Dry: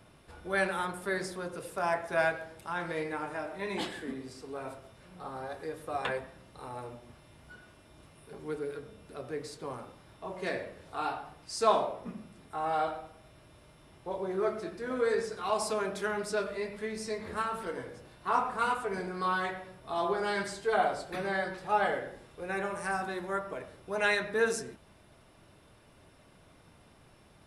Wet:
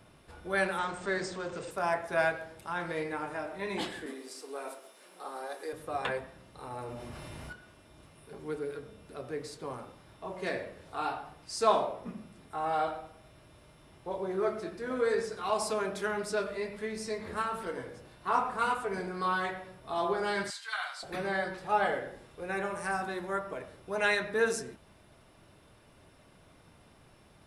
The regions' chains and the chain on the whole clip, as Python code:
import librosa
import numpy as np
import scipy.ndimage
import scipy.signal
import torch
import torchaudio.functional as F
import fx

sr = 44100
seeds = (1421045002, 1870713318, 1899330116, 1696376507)

y = fx.chain(x, sr, fx.zero_step(step_db=-44.5),
    fx.brickwall_lowpass(high_hz=8700.0),
    fx.hum_notches(base_hz=60, count=9), at=(0.78, 1.71))
y = fx.chain(y, sr, fx.highpass(hz=300.0, slope=24),
    fx.high_shelf(hz=5900.0, db=11.5), at=(4.06, 5.73))
y = fx.chain(y, sr, fx.notch(hz=3400.0, q=17.0),
    fx.env_flatten(amount_pct=70), at=(6.71, 7.53))
y = fx.chain(y, sr, fx.highpass(hz=1200.0, slope=24),
    fx.peak_eq(hz=4100.0, db=6.0, octaves=0.74), at=(20.5, 21.03))